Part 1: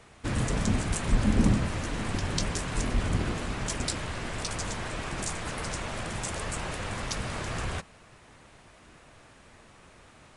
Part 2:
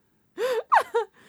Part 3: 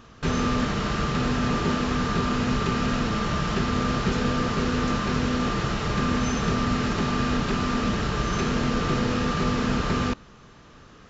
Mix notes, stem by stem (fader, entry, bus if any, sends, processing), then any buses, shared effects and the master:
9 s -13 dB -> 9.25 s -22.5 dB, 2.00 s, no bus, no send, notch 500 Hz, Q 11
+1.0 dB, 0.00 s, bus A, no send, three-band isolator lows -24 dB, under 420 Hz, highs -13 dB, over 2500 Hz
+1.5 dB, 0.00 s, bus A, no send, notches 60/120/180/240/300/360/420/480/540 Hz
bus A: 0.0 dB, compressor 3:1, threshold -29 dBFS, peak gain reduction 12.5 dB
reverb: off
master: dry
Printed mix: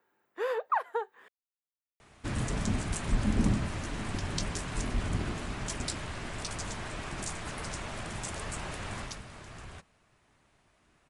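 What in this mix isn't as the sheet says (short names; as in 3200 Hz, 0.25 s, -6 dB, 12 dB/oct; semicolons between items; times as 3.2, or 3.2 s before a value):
stem 1 -13.0 dB -> -4.0 dB; stem 3: muted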